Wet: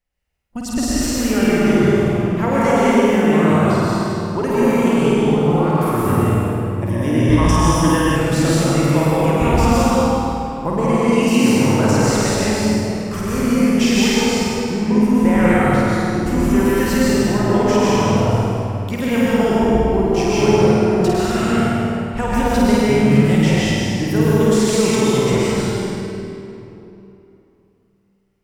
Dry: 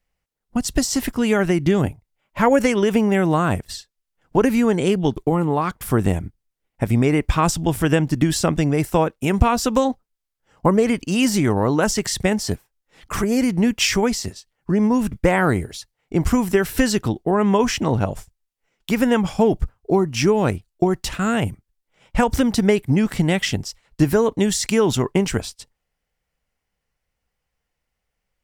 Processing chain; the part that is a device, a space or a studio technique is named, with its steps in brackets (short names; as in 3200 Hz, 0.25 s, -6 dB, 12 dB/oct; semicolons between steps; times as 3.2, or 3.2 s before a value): tunnel (flutter echo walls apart 8.8 m, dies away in 0.98 s; reverb RT60 3.1 s, pre-delay 0.116 s, DRR -7 dB); 6.89–8.16 ripple EQ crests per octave 1.2, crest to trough 11 dB; gain -7 dB